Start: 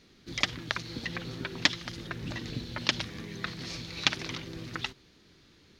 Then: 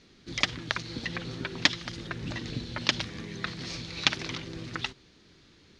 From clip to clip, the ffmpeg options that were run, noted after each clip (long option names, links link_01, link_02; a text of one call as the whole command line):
ffmpeg -i in.wav -af "lowpass=frequency=9200:width=0.5412,lowpass=frequency=9200:width=1.3066,volume=1.5dB" out.wav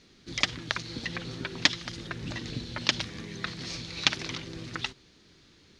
ffmpeg -i in.wav -af "highshelf=frequency=5400:gain=5,volume=-1dB" out.wav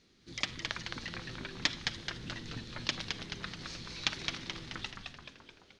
ffmpeg -i in.wav -filter_complex "[0:a]bandreject=frequency=140.6:width_type=h:width=4,bandreject=frequency=281.2:width_type=h:width=4,bandreject=frequency=421.8:width_type=h:width=4,bandreject=frequency=562.4:width_type=h:width=4,bandreject=frequency=703:width_type=h:width=4,bandreject=frequency=843.6:width_type=h:width=4,bandreject=frequency=984.2:width_type=h:width=4,bandreject=frequency=1124.8:width_type=h:width=4,bandreject=frequency=1265.4:width_type=h:width=4,bandreject=frequency=1406:width_type=h:width=4,bandreject=frequency=1546.6:width_type=h:width=4,bandreject=frequency=1687.2:width_type=h:width=4,bandreject=frequency=1827.8:width_type=h:width=4,bandreject=frequency=1968.4:width_type=h:width=4,bandreject=frequency=2109:width_type=h:width=4,bandreject=frequency=2249.6:width_type=h:width=4,bandreject=frequency=2390.2:width_type=h:width=4,bandreject=frequency=2530.8:width_type=h:width=4,bandreject=frequency=2671.4:width_type=h:width=4,bandreject=frequency=2812:width_type=h:width=4,bandreject=frequency=2952.6:width_type=h:width=4,bandreject=frequency=3093.2:width_type=h:width=4,bandreject=frequency=3233.8:width_type=h:width=4,bandreject=frequency=3374.4:width_type=h:width=4,bandreject=frequency=3515:width_type=h:width=4,bandreject=frequency=3655.6:width_type=h:width=4,bandreject=frequency=3796.2:width_type=h:width=4,bandreject=frequency=3936.8:width_type=h:width=4,bandreject=frequency=4077.4:width_type=h:width=4,bandreject=frequency=4218:width_type=h:width=4,bandreject=frequency=4358.6:width_type=h:width=4,asplit=2[link_01][link_02];[link_02]asplit=8[link_03][link_04][link_05][link_06][link_07][link_08][link_09][link_10];[link_03]adelay=215,afreqshift=-130,volume=-4.5dB[link_11];[link_04]adelay=430,afreqshift=-260,volume=-9.5dB[link_12];[link_05]adelay=645,afreqshift=-390,volume=-14.6dB[link_13];[link_06]adelay=860,afreqshift=-520,volume=-19.6dB[link_14];[link_07]adelay=1075,afreqshift=-650,volume=-24.6dB[link_15];[link_08]adelay=1290,afreqshift=-780,volume=-29.7dB[link_16];[link_09]adelay=1505,afreqshift=-910,volume=-34.7dB[link_17];[link_10]adelay=1720,afreqshift=-1040,volume=-39.8dB[link_18];[link_11][link_12][link_13][link_14][link_15][link_16][link_17][link_18]amix=inputs=8:normalize=0[link_19];[link_01][link_19]amix=inputs=2:normalize=0,volume=-8dB" out.wav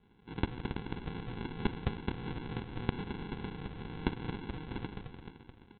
ffmpeg -i in.wav -af "equalizer=frequency=200:width_type=o:width=0.77:gain=4,aresample=8000,acrusher=samples=13:mix=1:aa=0.000001,aresample=44100,volume=2.5dB" out.wav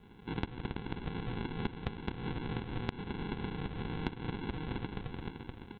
ffmpeg -i in.wav -af "acompressor=threshold=-44dB:ratio=4,volume=9dB" out.wav